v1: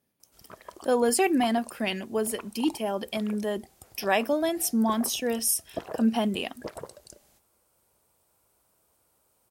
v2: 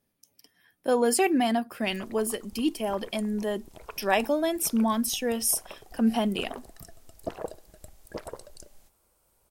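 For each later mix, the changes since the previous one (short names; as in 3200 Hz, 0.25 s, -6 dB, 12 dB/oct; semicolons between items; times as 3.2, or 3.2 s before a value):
background: entry +1.50 s; master: remove HPF 78 Hz 12 dB/oct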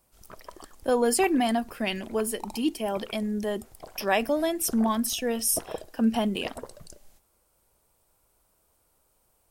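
background: entry -1.70 s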